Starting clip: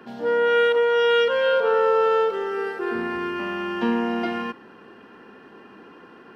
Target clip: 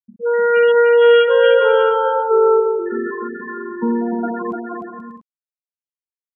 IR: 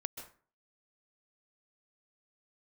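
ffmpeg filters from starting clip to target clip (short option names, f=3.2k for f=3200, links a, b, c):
-af "afftfilt=real='re*gte(hypot(re,im),0.178)':imag='im*gte(hypot(re,im),0.178)':win_size=1024:overlap=0.75,areverse,acompressor=mode=upward:threshold=-25dB:ratio=2.5,areverse,aecho=1:1:300|480|588|652.8|691.7:0.631|0.398|0.251|0.158|0.1,volume=4.5dB"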